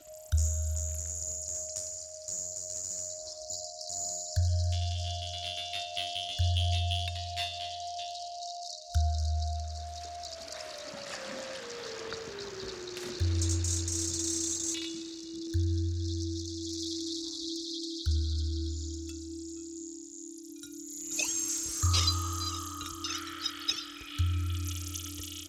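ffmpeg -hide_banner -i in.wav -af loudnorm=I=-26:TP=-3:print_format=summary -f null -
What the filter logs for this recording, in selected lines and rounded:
Input Integrated:    -33.7 LUFS
Input True Peak:     -14.3 dBTP
Input LRA:             4.4 LU
Input Threshold:     -43.8 LUFS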